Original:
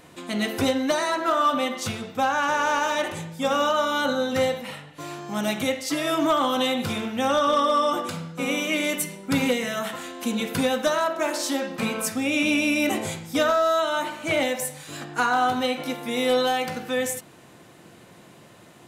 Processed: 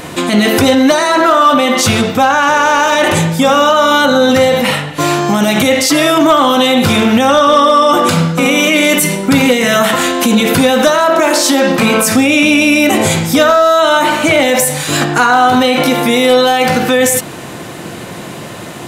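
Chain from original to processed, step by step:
boost into a limiter +24 dB
level −1 dB

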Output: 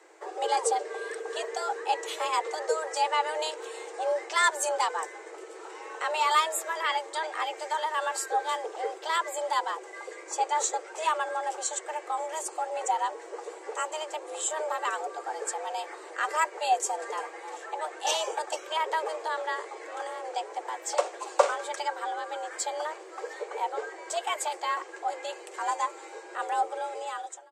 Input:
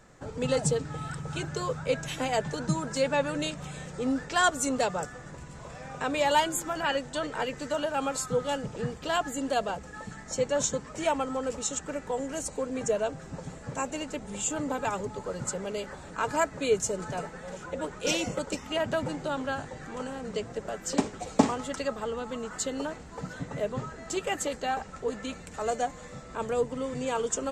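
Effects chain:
fade-out on the ending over 0.77 s
frequency shifter +310 Hz

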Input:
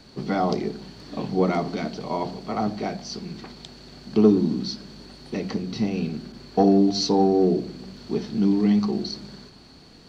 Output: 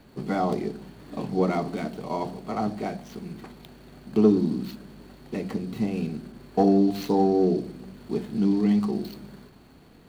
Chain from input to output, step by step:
running median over 9 samples
level −2 dB

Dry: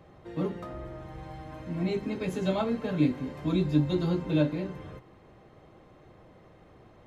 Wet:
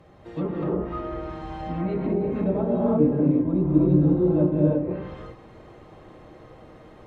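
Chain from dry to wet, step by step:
reverb whose tail is shaped and stops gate 370 ms rising, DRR −5 dB
treble cut that deepens with the level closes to 710 Hz, closed at −21.5 dBFS
level +1.5 dB

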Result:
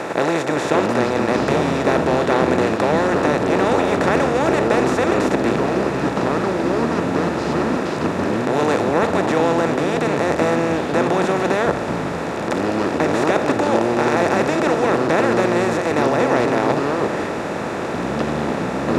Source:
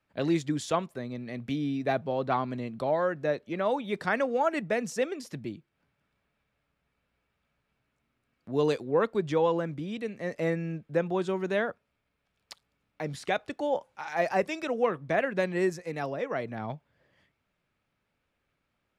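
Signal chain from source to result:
compressor on every frequency bin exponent 0.2
delay with pitch and tempo change per echo 500 ms, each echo −6 semitones, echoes 2

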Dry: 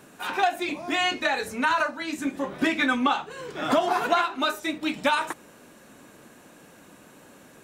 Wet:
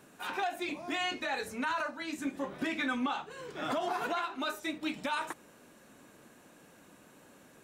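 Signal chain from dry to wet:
brickwall limiter −17 dBFS, peak gain reduction 8 dB
level −7 dB

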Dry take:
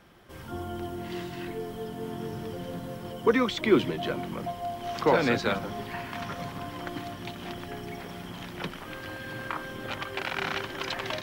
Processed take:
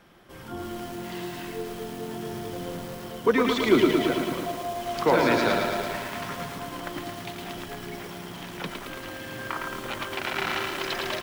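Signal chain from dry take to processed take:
parametric band 76 Hz −6.5 dB 0.99 octaves
on a send: single-tap delay 108 ms −10 dB
on the sum: feedback echo at a low word length 111 ms, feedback 80%, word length 7 bits, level −4 dB
level +1 dB

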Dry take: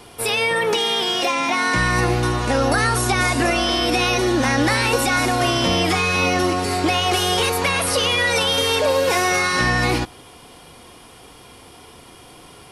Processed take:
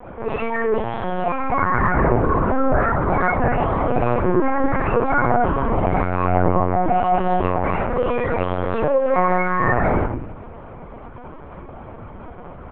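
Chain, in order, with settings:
low-pass filter 1,700 Hz 24 dB per octave
parametric band 260 Hz +2.5 dB 0.48 octaves
on a send: echo with shifted repeats 124 ms, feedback 47%, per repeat +140 Hz, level −22 dB
on the sum: rectangular room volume 260 cubic metres, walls furnished, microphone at 5.3 metres
linear-prediction vocoder at 8 kHz pitch kept
in parallel at +3 dB: downward compressor, threshold −24 dBFS, peak gain reduction 22 dB
on the sum: level −11 dB

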